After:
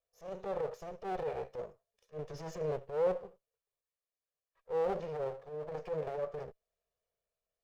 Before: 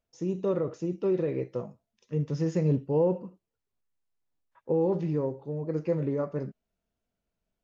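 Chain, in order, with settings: minimum comb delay 1.7 ms; resonant low shelf 370 Hz -6.5 dB, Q 3; transient shaper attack -11 dB, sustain +1 dB; gain -5 dB

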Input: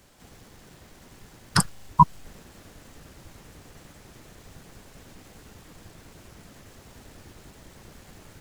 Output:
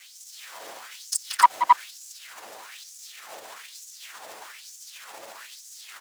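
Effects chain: minimum comb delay 9.2 ms; in parallel at -3 dB: negative-ratio compressor -53 dBFS, ratio -0.5; on the sum: soft clip -10 dBFS, distortion -13 dB; tempo 1.4×; on a send: loudspeakers at several distances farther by 62 m -7 dB, 92 m -2 dB; on the sum: LFO high-pass sine 1.1 Hz 590–6600 Hz

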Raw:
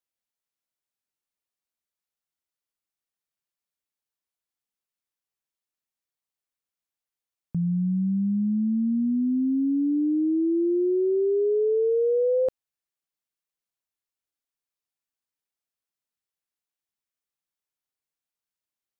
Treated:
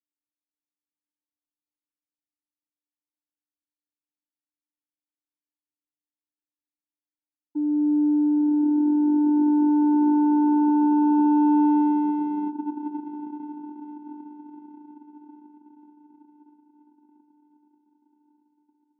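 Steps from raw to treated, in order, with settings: elliptic band-pass 180–440 Hz; diffused feedback echo 0.961 s, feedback 47%, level -12 dB; vocoder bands 4, square 297 Hz; gain +4.5 dB

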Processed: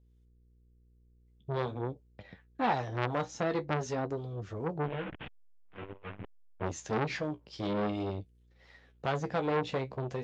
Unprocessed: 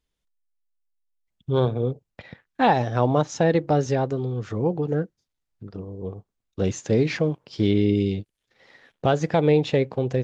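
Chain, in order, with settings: 4.83–6.66 delta modulation 16 kbps, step -24.5 dBFS; flange 0.47 Hz, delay 9.1 ms, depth 8.4 ms, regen +41%; harmonic tremolo 2.7 Hz, depth 50%, crossover 690 Hz; buzz 60 Hz, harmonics 8, -62 dBFS -9 dB/oct; core saturation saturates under 1600 Hz; gain -1.5 dB

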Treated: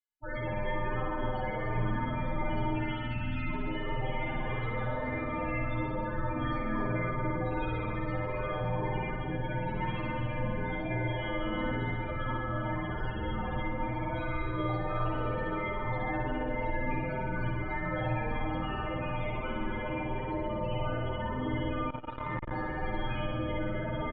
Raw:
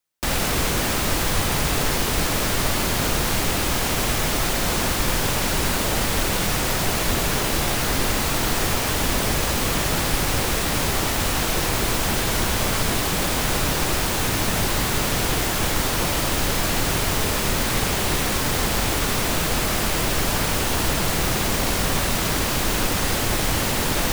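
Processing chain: 2.73–3.44 spectral delete 600–1500 Hz; resonator bank G2 sus4, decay 0.37 s; loudest bins only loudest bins 16; on a send: feedback echo 0.275 s, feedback 59%, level -11.5 dB; on the sum: mistuned SSB -270 Hz 220–3300 Hz; spring tank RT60 1.7 s, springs 51 ms, chirp 20 ms, DRR -2.5 dB; 21.9–22.51 core saturation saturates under 250 Hz; gain +8 dB

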